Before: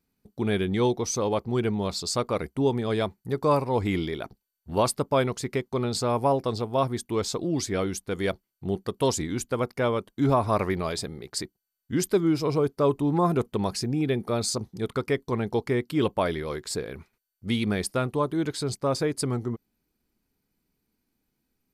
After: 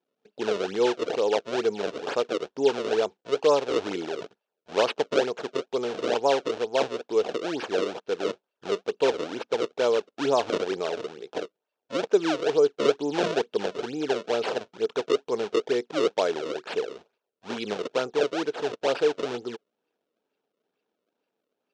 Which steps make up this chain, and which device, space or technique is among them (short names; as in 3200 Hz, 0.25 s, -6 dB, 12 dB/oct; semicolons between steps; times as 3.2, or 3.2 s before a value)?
circuit-bent sampling toy (decimation with a swept rate 31×, swing 160% 2.2 Hz; speaker cabinet 430–5600 Hz, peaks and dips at 450 Hz +8 dB, 1100 Hz -6 dB, 2000 Hz -8 dB, 4700 Hz -4 dB); gain +1.5 dB